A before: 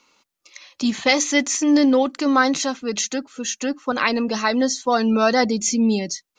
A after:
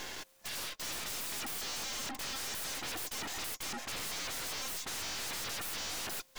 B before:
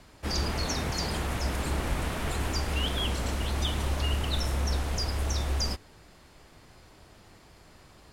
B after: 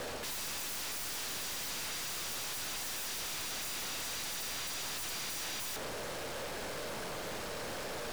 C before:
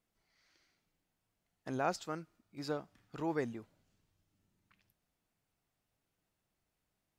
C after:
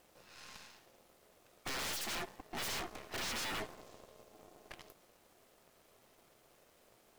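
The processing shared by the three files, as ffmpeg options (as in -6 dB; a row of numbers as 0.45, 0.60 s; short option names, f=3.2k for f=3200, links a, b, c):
-af "areverse,acompressor=threshold=-33dB:ratio=10,areverse,asoftclip=type=tanh:threshold=-33dB,aeval=exprs='val(0)*sin(2*PI*530*n/s)':c=same,aeval=exprs='0.0224*sin(PI/2*10*val(0)/0.0224)':c=same,aeval=exprs='0.0237*(cos(1*acos(clip(val(0)/0.0237,-1,1)))-cos(1*PI/2))+0.00596*(cos(6*acos(clip(val(0)/0.0237,-1,1)))-cos(6*PI/2))':c=same,volume=-3.5dB"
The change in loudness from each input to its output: -17.5, -7.0, -1.0 LU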